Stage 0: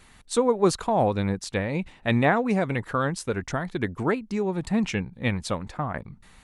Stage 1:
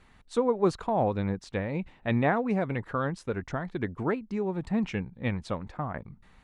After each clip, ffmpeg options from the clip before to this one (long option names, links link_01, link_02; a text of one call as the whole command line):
ffmpeg -i in.wav -af "aemphasis=mode=reproduction:type=75fm,volume=-4.5dB" out.wav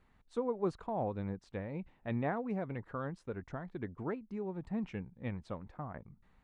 ffmpeg -i in.wav -af "highshelf=frequency=2300:gain=-9,volume=-9dB" out.wav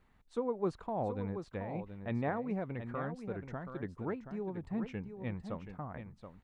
ffmpeg -i in.wav -af "aecho=1:1:727:0.355" out.wav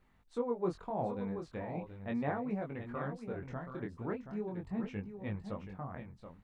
ffmpeg -i in.wav -af "flanger=delay=19.5:depth=5.3:speed=0.38,volume=2.5dB" out.wav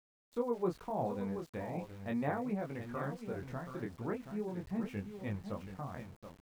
ffmpeg -i in.wav -af "aeval=exprs='val(0)*gte(abs(val(0)),0.002)':channel_layout=same" out.wav